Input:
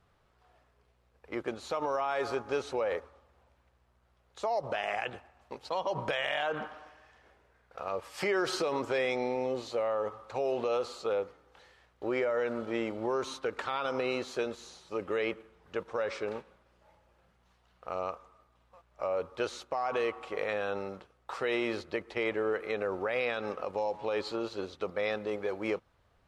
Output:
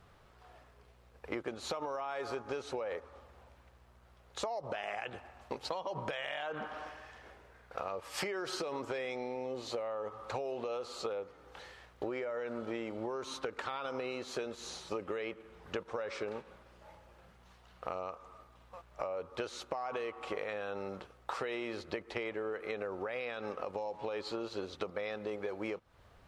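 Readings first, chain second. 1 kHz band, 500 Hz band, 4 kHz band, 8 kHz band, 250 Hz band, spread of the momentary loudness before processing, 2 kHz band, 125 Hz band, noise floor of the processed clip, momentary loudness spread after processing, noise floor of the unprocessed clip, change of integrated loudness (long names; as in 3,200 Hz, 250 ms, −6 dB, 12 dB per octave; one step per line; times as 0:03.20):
−5.5 dB, −6.5 dB, −3.5 dB, −0.5 dB, −5.5 dB, 9 LU, −6.0 dB, −3.5 dB, −62 dBFS, 14 LU, −69 dBFS, −6.0 dB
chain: downward compressor 16 to 1, threshold −42 dBFS, peak gain reduction 17 dB
level +7.5 dB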